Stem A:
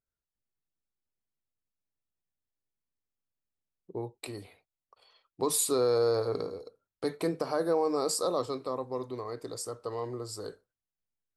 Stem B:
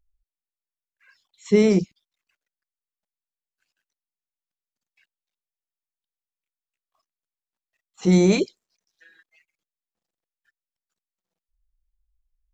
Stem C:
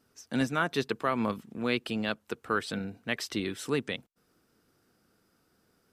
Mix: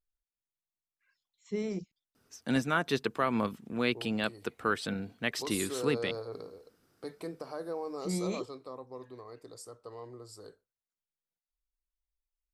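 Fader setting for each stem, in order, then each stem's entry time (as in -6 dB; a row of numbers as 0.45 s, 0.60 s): -10.0 dB, -17.5 dB, -0.5 dB; 0.00 s, 0.00 s, 2.15 s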